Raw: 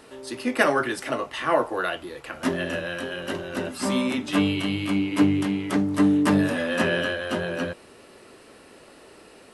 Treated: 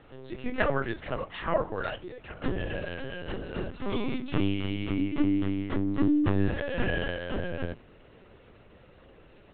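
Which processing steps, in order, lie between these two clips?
bass shelf 230 Hz +10.5 dB; hum notches 50/100/150/200/250/300 Hz; LPC vocoder at 8 kHz pitch kept; trim -7 dB

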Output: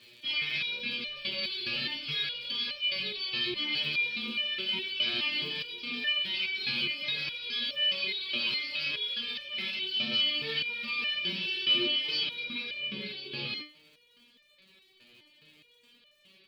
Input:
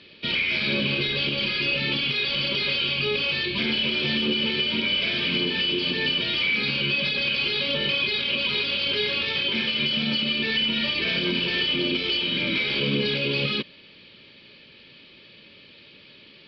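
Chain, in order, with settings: crackle 84 per s -40 dBFS; treble shelf 2 kHz +9 dB, from 12.47 s +2.5 dB; resonator arpeggio 4.8 Hz 120–600 Hz

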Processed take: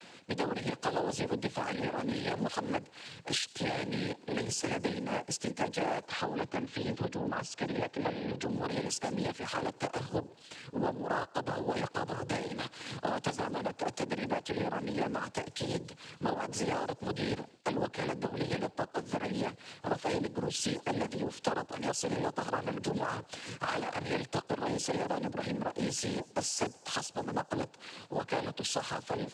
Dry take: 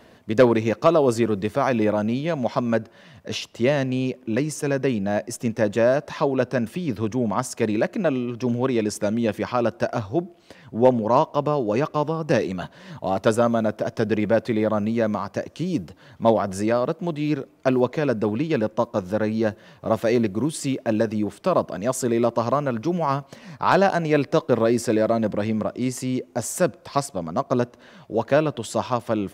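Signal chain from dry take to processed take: gate with hold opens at -45 dBFS; peaking EQ 4.1 kHz +11 dB 2.1 oct; compression 5:1, threshold -26 dBFS, peak gain reduction 15.5 dB; AM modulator 200 Hz, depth 100%; noise-vocoded speech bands 8; 6.06–8.52 s: distance through air 87 m; feedback echo behind a high-pass 143 ms, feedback 58%, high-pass 4.8 kHz, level -21.5 dB

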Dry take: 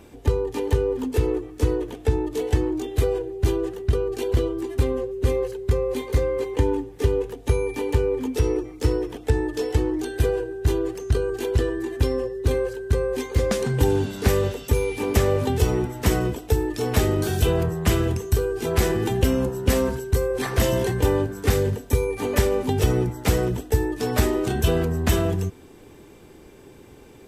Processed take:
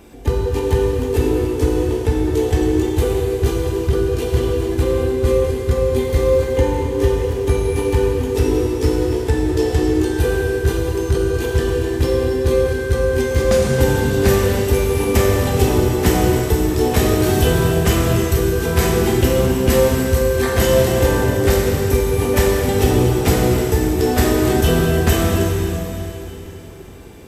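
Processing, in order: treble shelf 12 kHz +3.5 dB; plate-style reverb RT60 3.4 s, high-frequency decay 1×, DRR -2.5 dB; trim +2.5 dB

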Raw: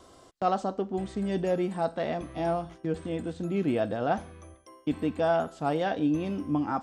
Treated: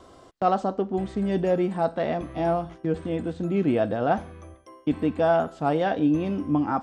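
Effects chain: treble shelf 4.4 kHz -9.5 dB; trim +4.5 dB

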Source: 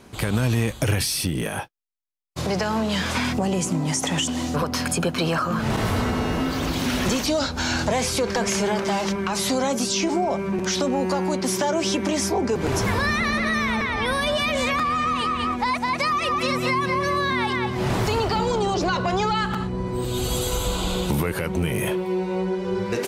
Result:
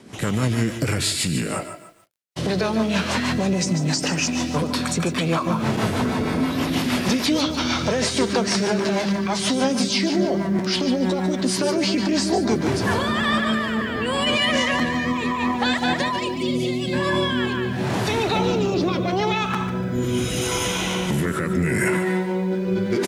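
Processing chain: time-frequency box 19.47–22.22 s, 1.3–2.6 kHz +6 dB; high-pass 130 Hz 12 dB/octave; time-frequency box 16.19–16.93 s, 850–2500 Hz -20 dB; in parallel at -1.5 dB: peak limiter -19 dBFS, peak gain reduction 8.5 dB; on the sum: formant shift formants -3 st; rotary cabinet horn 6.3 Hz, later 0.8 Hz, at 12.44 s; on a send: feedback delay 144 ms, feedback 29%, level -13 dB; on the sum: bit-crushed delay 147 ms, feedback 35%, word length 8-bit, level -11.5 dB

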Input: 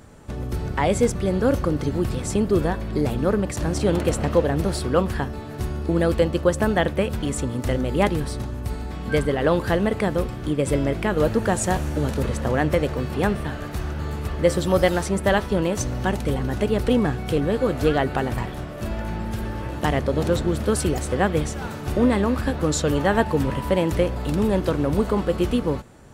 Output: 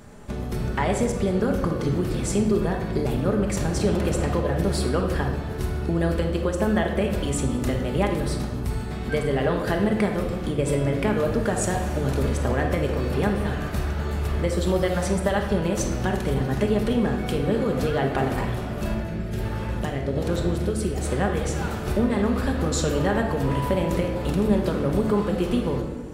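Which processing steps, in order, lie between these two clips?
compression, threshold -21 dBFS, peak gain reduction 9 dB; 18.94–21.05 s: rotary cabinet horn 1.2 Hz; simulated room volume 1000 m³, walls mixed, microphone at 1.3 m

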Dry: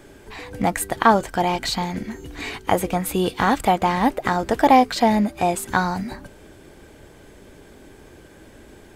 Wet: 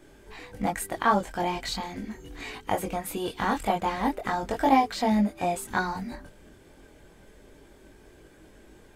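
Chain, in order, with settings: chorus voices 6, 0.36 Hz, delay 22 ms, depth 3.5 ms; trim -4.5 dB

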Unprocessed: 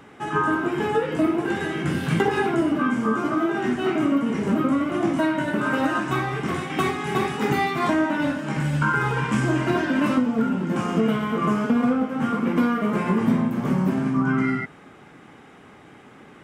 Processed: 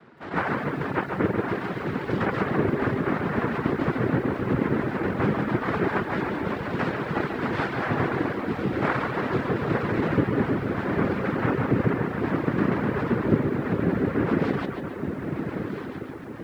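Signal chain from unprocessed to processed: treble shelf 2.2 kHz +6.5 dB; band-stop 850 Hz; on a send: echo that smears into a reverb 1224 ms, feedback 49%, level -6.5 dB; on the sum: noise-vocoded speech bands 3; distance through air 440 m; bucket-brigade echo 137 ms, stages 4096, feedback 50%, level -6.5 dB; reverb removal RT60 0.59 s; bit-crushed delay 152 ms, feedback 35%, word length 8-bit, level -12 dB; trim -2.5 dB

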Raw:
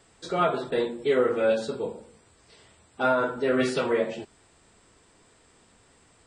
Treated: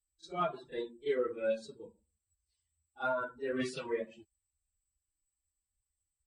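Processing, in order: expander on every frequency bin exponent 2; Chebyshev shaper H 6 -45 dB, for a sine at -15 dBFS; pre-echo 37 ms -15.5 dB; trim -7 dB

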